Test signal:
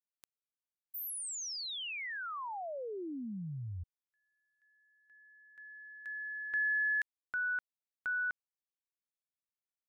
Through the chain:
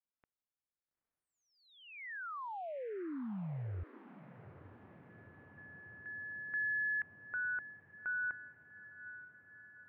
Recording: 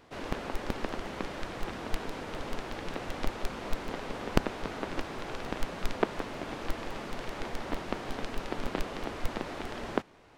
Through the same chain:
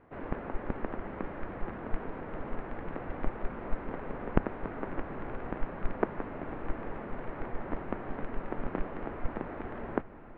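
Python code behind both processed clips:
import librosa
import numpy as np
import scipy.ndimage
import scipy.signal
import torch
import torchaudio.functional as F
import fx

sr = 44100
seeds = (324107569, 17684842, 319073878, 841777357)

y = scipy.signal.sosfilt(scipy.signal.butter(4, 2000.0, 'lowpass', fs=sr, output='sos'), x)
y = fx.low_shelf(y, sr, hz=450.0, db=3.5)
y = fx.echo_diffused(y, sr, ms=878, feedback_pct=68, wet_db=-15.5)
y = y * 10.0 ** (-3.0 / 20.0)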